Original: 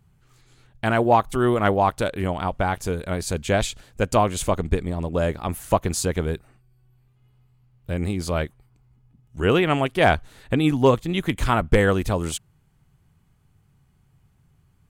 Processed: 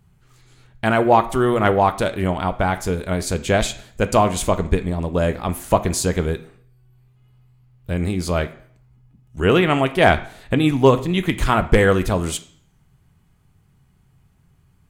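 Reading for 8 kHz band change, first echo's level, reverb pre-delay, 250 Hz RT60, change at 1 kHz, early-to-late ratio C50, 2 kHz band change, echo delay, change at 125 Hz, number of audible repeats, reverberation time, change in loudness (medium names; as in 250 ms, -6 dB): +3.0 dB, no echo, 3 ms, 0.55 s, +3.0 dB, 14.5 dB, +3.5 dB, no echo, +3.0 dB, no echo, 0.55 s, +3.5 dB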